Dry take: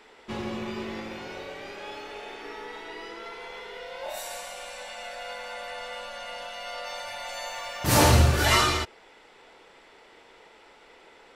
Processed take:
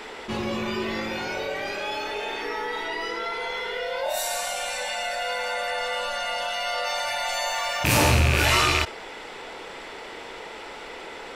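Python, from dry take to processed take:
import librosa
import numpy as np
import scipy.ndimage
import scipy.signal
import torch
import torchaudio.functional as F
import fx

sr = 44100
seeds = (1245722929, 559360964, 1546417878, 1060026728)

p1 = fx.rattle_buzz(x, sr, strikes_db=-30.0, level_db=-11.0)
p2 = fx.noise_reduce_blind(p1, sr, reduce_db=6)
p3 = 10.0 ** (-20.5 / 20.0) * np.tanh(p2 / 10.0 ** (-20.5 / 20.0))
p4 = p2 + F.gain(torch.from_numpy(p3), -6.5).numpy()
p5 = fx.env_flatten(p4, sr, amount_pct=50)
y = F.gain(torch.from_numpy(p5), -4.0).numpy()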